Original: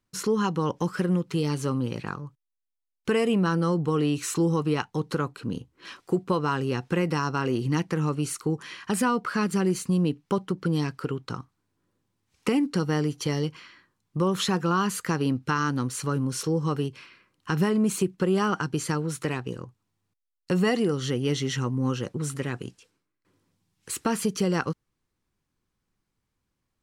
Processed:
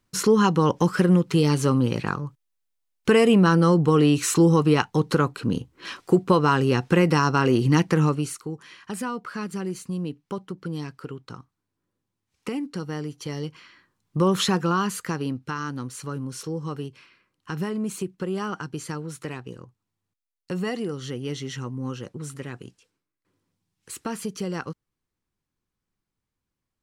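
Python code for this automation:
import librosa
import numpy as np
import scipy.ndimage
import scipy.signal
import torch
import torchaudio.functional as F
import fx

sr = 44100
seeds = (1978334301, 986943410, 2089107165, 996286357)

y = fx.gain(x, sr, db=fx.line((8.03, 6.5), (8.47, -6.0), (13.2, -6.0), (14.31, 4.5), (15.51, -5.0)))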